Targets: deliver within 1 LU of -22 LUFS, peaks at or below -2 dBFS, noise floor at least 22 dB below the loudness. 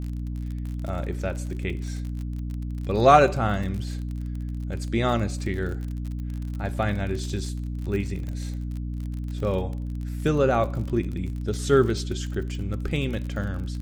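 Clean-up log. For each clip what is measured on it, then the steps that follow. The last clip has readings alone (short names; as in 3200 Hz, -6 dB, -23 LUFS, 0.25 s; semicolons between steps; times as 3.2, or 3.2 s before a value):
ticks 41/s; hum 60 Hz; harmonics up to 300 Hz; hum level -28 dBFS; loudness -27.0 LUFS; peak -3.0 dBFS; loudness target -22.0 LUFS
-> de-click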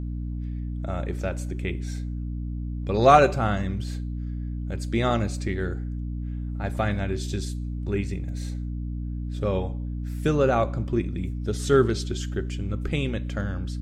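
ticks 0.14/s; hum 60 Hz; harmonics up to 300 Hz; hum level -28 dBFS
-> de-hum 60 Hz, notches 5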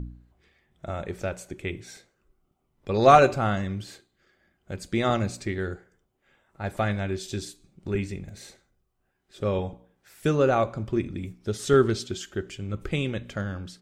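hum none; loudness -26.5 LUFS; peak -3.0 dBFS; loudness target -22.0 LUFS
-> gain +4.5 dB; limiter -2 dBFS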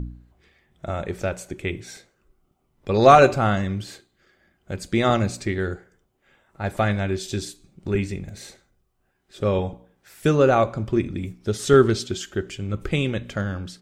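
loudness -22.5 LUFS; peak -2.0 dBFS; noise floor -69 dBFS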